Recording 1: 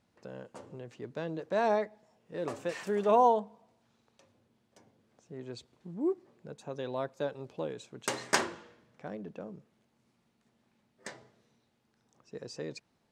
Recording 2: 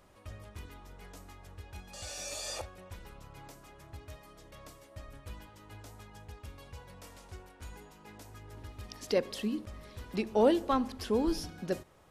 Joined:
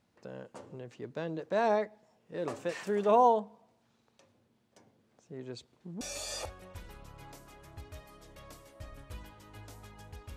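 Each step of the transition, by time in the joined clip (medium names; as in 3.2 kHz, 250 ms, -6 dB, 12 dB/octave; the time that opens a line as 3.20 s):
recording 1
6.01 s: go over to recording 2 from 2.17 s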